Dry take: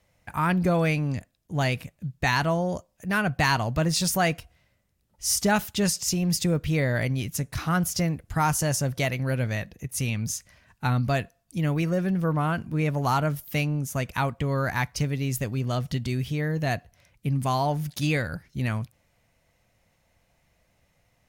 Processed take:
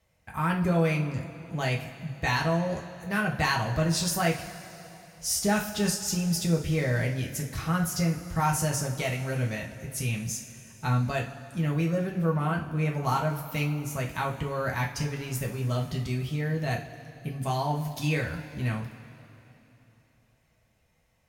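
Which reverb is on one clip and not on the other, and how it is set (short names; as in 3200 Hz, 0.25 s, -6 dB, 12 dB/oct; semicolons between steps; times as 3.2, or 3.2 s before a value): two-slope reverb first 0.32 s, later 3.3 s, from -18 dB, DRR -1 dB; gain -6 dB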